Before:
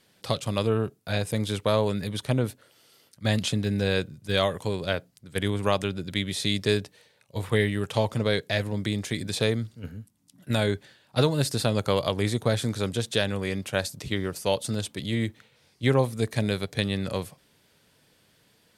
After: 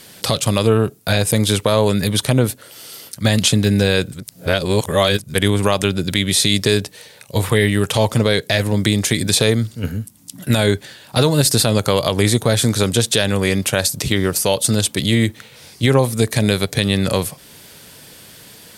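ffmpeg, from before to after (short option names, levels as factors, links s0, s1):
-filter_complex "[0:a]asplit=3[s0][s1][s2];[s0]atrim=end=4.122[s3];[s1]atrim=start=4.118:end=5.342,asetpts=PTS-STARTPTS,areverse[s4];[s2]atrim=start=5.338[s5];[s3][s4]acrossfade=d=0.004:c1=hsin:c2=hsin[s6];[s6][s5]acrossfade=d=0.004:c1=hsin:c2=hsin,highshelf=f=6000:g=9.5,acompressor=threshold=0.00708:ratio=1.5,alimiter=level_in=9.44:limit=0.891:release=50:level=0:latency=1,volume=0.891"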